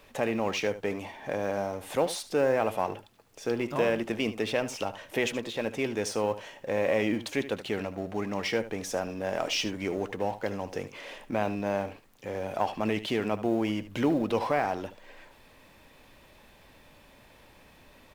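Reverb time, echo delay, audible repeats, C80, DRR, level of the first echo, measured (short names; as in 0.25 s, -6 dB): none, 75 ms, 1, none, none, -14.0 dB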